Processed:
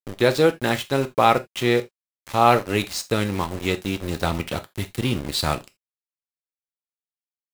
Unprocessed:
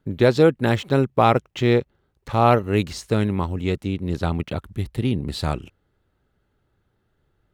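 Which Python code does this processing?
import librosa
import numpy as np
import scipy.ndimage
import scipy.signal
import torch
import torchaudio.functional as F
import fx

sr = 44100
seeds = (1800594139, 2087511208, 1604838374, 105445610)

p1 = fx.tilt_eq(x, sr, slope=2.0)
p2 = fx.rider(p1, sr, range_db=4, speed_s=2.0)
p3 = p1 + F.gain(torch.from_numpy(p2), 2.0).numpy()
p4 = np.where(np.abs(p3) >= 10.0 ** (-23.0 / 20.0), p3, 0.0)
p5 = fx.rev_gated(p4, sr, seeds[0], gate_ms=100, shape='falling', drr_db=8.5)
y = F.gain(torch.from_numpy(p5), -6.5).numpy()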